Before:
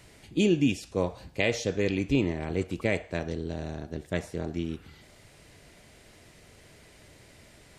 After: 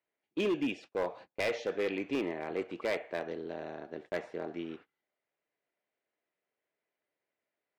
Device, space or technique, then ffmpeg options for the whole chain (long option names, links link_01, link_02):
walkie-talkie: -af "highpass=410,lowpass=2300,asoftclip=type=hard:threshold=-26dB,agate=range=-30dB:threshold=-49dB:ratio=16:detection=peak"